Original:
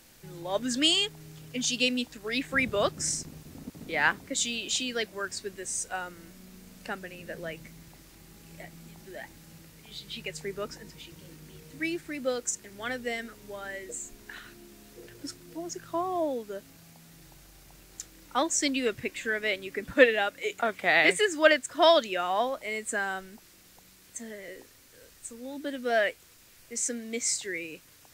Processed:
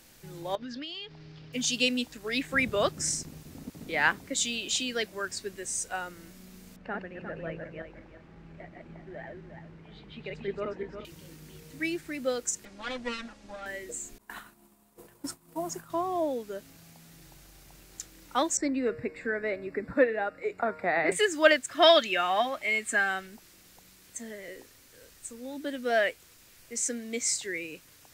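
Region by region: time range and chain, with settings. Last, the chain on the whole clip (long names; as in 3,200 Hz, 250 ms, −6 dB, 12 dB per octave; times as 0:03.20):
0:00.55–0:01.53: Chebyshev low-pass filter 5,000 Hz, order 4 + downward compressor 10 to 1, threshold −36 dBFS
0:06.76–0:11.05: feedback delay that plays each chunk backwards 177 ms, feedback 46%, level −2 dB + low-pass filter 1,700 Hz
0:12.65–0:13.66: lower of the sound and its delayed copy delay 3.6 ms + Bessel low-pass filter 5,800 Hz, order 4
0:14.18–0:15.90: downward expander −42 dBFS + drawn EQ curve 120 Hz 0 dB, 190 Hz +7 dB, 380 Hz −1 dB, 1,000 Hz +14 dB, 1,600 Hz +1 dB, 5,900 Hz −2 dB, 8,600 Hz +7 dB
0:18.57–0:21.12: moving average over 14 samples + hum removal 155.8 Hz, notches 20 + multiband upward and downward compressor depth 40%
0:21.68–0:23.27: parametric band 2,200 Hz +8 dB 1.6 octaves + notch comb filter 490 Hz
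whole clip: no processing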